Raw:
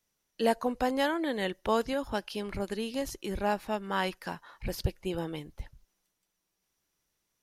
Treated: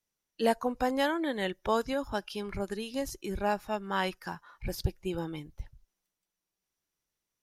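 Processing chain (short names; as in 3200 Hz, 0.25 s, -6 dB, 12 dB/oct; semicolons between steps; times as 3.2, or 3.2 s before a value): spectral noise reduction 7 dB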